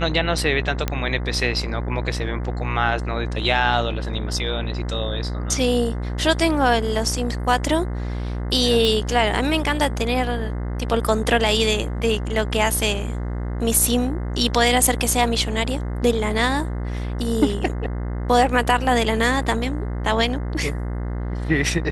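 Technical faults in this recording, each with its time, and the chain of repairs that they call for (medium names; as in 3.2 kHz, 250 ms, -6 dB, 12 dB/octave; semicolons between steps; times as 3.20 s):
buzz 60 Hz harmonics 35 -26 dBFS
0.88 s: pop -8 dBFS
8.85 s: pop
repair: de-click; de-hum 60 Hz, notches 35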